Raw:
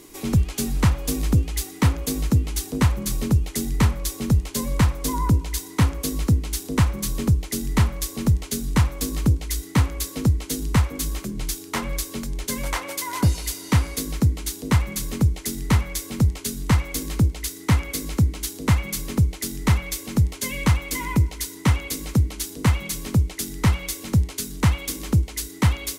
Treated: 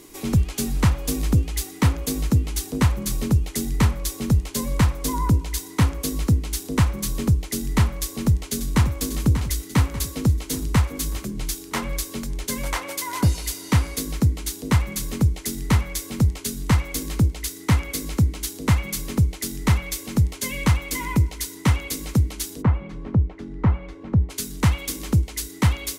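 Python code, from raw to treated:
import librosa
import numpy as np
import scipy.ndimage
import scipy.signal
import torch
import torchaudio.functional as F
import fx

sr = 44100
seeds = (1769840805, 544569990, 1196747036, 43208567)

y = fx.echo_throw(x, sr, start_s=7.99, length_s=0.94, ms=590, feedback_pct=55, wet_db=-9.5)
y = fx.lowpass(y, sr, hz=1200.0, slope=12, at=(22.61, 24.29), fade=0.02)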